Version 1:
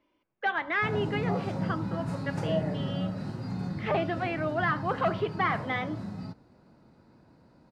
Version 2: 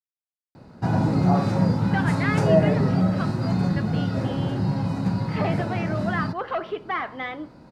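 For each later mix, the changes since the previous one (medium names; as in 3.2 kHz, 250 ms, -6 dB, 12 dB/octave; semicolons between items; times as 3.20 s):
speech: entry +1.50 s; background +11.0 dB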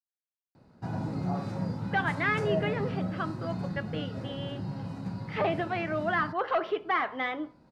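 background -12.0 dB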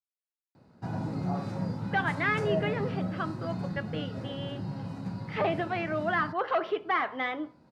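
master: add high-pass 63 Hz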